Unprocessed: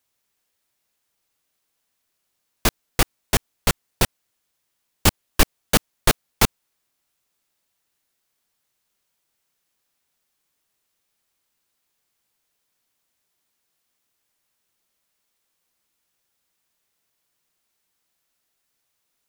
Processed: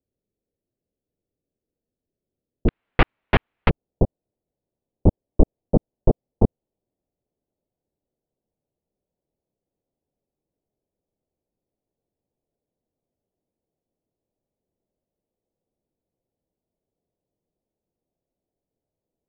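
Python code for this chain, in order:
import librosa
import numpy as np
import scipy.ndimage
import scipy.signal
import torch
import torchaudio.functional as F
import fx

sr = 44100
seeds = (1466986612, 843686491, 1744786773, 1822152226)

y = fx.cheby2_lowpass(x, sr, hz=fx.steps((0.0, 1300.0), (2.68, 6600.0), (3.68, 1600.0)), order=4, stop_db=50)
y = y * 10.0 ** (4.0 / 20.0)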